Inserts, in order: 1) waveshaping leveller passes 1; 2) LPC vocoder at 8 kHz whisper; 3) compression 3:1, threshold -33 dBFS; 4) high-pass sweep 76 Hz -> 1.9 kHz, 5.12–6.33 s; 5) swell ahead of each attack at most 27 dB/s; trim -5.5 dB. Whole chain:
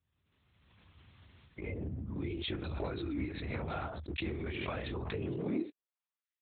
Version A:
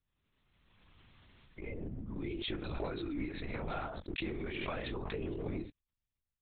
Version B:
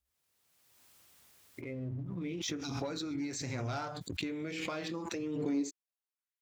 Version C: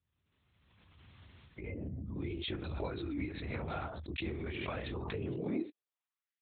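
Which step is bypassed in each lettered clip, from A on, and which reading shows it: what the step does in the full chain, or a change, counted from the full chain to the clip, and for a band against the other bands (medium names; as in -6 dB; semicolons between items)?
4, 125 Hz band -3.5 dB; 2, 125 Hz band -2.5 dB; 1, momentary loudness spread change +5 LU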